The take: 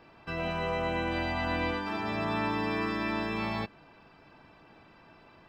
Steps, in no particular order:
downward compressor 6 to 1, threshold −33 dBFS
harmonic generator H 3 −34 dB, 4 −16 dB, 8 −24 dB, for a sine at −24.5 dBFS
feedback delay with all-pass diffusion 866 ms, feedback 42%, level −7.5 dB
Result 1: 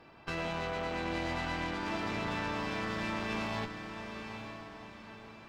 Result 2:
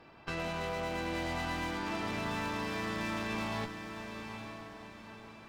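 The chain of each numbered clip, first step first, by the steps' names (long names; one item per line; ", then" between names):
downward compressor, then harmonic generator, then feedback delay with all-pass diffusion
harmonic generator, then downward compressor, then feedback delay with all-pass diffusion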